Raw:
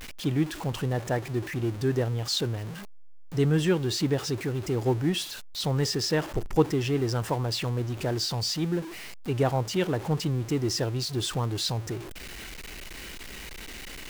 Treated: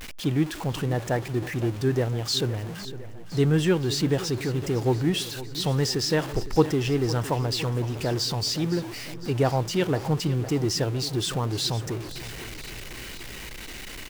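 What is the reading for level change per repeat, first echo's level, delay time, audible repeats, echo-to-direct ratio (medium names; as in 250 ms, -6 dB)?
-4.5 dB, -15.0 dB, 509 ms, 5, -13.0 dB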